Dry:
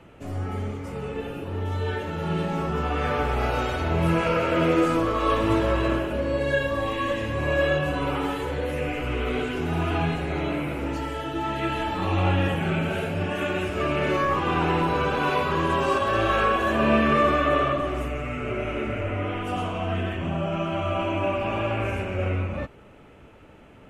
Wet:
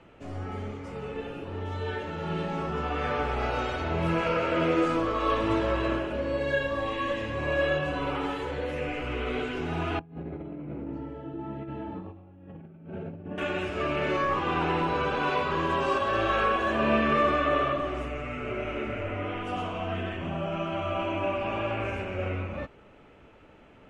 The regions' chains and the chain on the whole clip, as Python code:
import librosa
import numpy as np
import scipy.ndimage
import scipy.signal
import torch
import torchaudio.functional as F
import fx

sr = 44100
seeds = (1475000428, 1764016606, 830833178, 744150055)

y = fx.chain(x, sr, fx.bandpass_q(hz=180.0, q=1.0),
    fx.over_compress(threshold_db=-33.0, ratio=-0.5), at=(9.99, 13.38))
y = scipy.signal.sosfilt(scipy.signal.butter(2, 6200.0, 'lowpass', fs=sr, output='sos'), y)
y = fx.peak_eq(y, sr, hz=97.0, db=-4.0, octaves=2.4)
y = F.gain(torch.from_numpy(y), -3.0).numpy()